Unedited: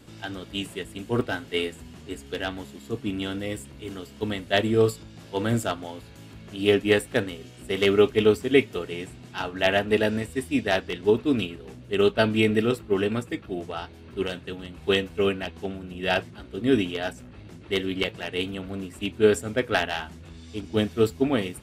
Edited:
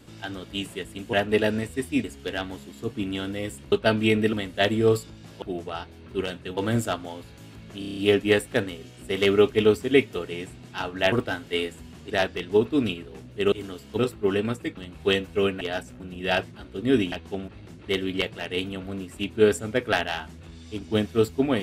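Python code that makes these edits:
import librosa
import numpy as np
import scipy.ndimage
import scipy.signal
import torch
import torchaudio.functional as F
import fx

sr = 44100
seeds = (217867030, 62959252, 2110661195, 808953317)

y = fx.edit(x, sr, fx.swap(start_s=1.13, length_s=0.98, other_s=9.72, other_length_s=0.91),
    fx.swap(start_s=3.79, length_s=0.47, other_s=12.05, other_length_s=0.61),
    fx.stutter(start_s=6.57, slice_s=0.03, count=7),
    fx.move(start_s=13.44, length_s=1.15, to_s=5.35),
    fx.swap(start_s=15.43, length_s=0.36, other_s=16.91, other_length_s=0.39), tone=tone)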